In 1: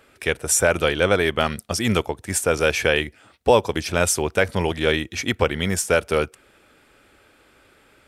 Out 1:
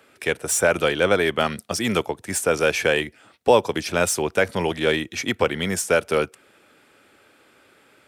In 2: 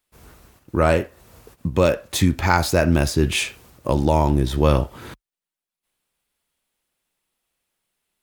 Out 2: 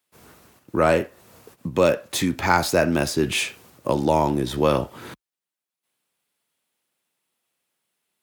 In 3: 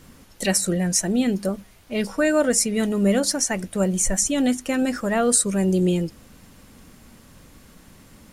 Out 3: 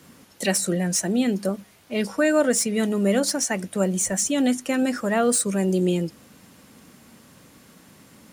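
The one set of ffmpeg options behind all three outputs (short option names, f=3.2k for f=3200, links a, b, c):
-filter_complex "[0:a]highpass=130,acrossover=split=220|1900[a][b][c];[a]alimiter=level_in=0.5dB:limit=-24dB:level=0:latency=1,volume=-0.5dB[d];[c]asoftclip=type=tanh:threshold=-16.5dB[e];[d][b][e]amix=inputs=3:normalize=0"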